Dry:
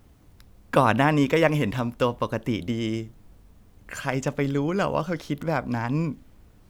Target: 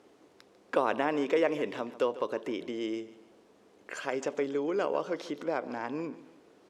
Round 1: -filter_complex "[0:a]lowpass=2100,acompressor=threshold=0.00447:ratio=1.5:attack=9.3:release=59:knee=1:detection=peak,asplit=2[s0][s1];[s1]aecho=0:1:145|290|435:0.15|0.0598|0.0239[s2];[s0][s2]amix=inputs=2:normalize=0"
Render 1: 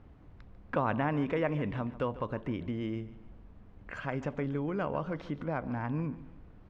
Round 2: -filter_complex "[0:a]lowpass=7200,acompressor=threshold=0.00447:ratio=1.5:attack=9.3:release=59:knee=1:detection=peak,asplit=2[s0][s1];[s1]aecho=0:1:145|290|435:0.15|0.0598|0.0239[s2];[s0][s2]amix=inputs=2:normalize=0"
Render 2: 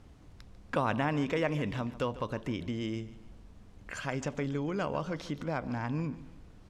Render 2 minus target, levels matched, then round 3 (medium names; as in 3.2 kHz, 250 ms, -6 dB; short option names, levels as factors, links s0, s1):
500 Hz band -3.5 dB
-filter_complex "[0:a]lowpass=7200,acompressor=threshold=0.00447:ratio=1.5:attack=9.3:release=59:knee=1:detection=peak,highpass=f=390:t=q:w=2.3,asplit=2[s0][s1];[s1]aecho=0:1:145|290|435:0.15|0.0598|0.0239[s2];[s0][s2]amix=inputs=2:normalize=0"